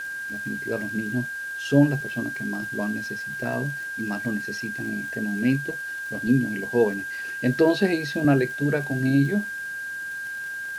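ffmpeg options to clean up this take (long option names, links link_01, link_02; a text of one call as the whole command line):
ffmpeg -i in.wav -af "adeclick=threshold=4,bandreject=frequency=1600:width=30,afwtdn=0.004" out.wav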